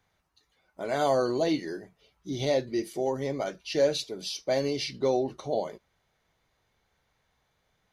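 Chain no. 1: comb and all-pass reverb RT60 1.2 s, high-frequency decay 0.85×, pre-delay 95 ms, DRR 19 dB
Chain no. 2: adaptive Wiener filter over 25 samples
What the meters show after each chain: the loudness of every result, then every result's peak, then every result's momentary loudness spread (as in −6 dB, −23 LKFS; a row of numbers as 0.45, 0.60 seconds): −29.0, −30.0 LKFS; −13.5, −13.5 dBFS; 12, 12 LU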